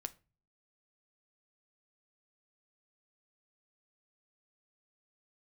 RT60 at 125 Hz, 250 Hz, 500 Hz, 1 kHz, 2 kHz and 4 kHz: 0.65, 0.50, 0.35, 0.30, 0.30, 0.25 s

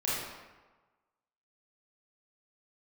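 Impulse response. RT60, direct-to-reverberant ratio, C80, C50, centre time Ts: 1.3 s, -8.5 dB, 1.5 dB, -2.5 dB, 92 ms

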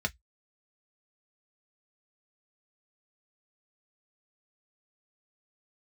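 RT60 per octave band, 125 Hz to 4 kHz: 0.15, 0.10, 0.05, 0.10, 0.10, 0.10 s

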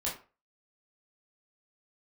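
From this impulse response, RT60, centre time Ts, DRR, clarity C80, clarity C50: 0.35 s, 29 ms, -6.0 dB, 13.5 dB, 7.5 dB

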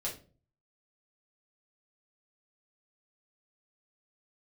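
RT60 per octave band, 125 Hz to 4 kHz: 0.70, 0.55, 0.45, 0.30, 0.30, 0.25 s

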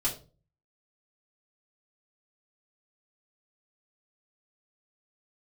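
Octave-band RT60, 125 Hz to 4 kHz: 0.65, 0.45, 0.40, 0.30, 0.25, 0.25 s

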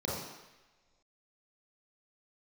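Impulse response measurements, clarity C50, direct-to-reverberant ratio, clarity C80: 0.0 dB, -5.5 dB, 3.0 dB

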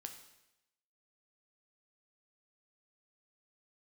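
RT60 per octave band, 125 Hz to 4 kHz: 0.90, 0.85, 0.95, 0.90, 0.90, 0.90 s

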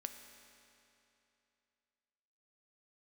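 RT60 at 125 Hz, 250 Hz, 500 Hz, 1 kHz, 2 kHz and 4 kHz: 2.9, 2.9, 2.9, 2.9, 2.8, 2.6 s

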